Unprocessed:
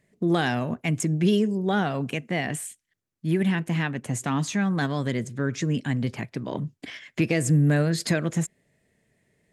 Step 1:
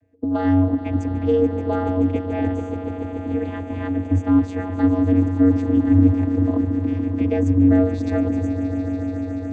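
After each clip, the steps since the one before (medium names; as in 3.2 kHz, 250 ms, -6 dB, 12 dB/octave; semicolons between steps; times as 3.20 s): tilt shelf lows +7 dB, about 1.3 kHz; echo with a slow build-up 144 ms, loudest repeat 5, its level -14 dB; vocoder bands 16, square 92.6 Hz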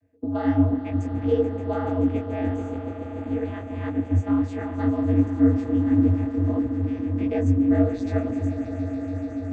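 detune thickener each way 52 cents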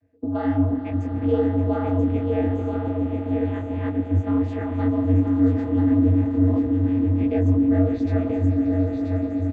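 in parallel at -2 dB: peak limiter -19 dBFS, peak gain reduction 10.5 dB; on the sum: distance through air 110 m; delay 983 ms -5 dB; trim -3.5 dB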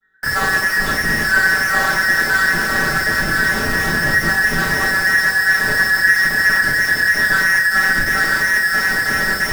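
every band turned upside down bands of 2 kHz; in parallel at -5 dB: Schmitt trigger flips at -31.5 dBFS; on the sum: reverberation RT60 0.50 s, pre-delay 5 ms, DRR -5.5 dB; trim -4 dB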